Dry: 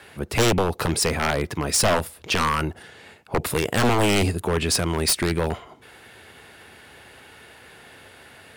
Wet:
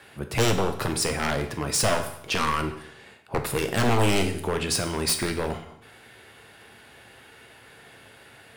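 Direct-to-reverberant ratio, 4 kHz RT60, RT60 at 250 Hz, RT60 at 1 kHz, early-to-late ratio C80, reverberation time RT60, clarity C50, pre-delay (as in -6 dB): 5.5 dB, 0.70 s, 0.75 s, 0.70 s, 12.5 dB, 0.70 s, 10.0 dB, 7 ms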